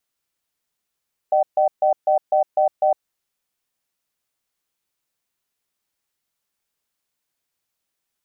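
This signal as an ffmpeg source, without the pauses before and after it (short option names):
-f lavfi -i "aevalsrc='0.15*(sin(2*PI*607*t)+sin(2*PI*764*t))*clip(min(mod(t,0.25),0.11-mod(t,0.25))/0.005,0,1)':d=1.66:s=44100"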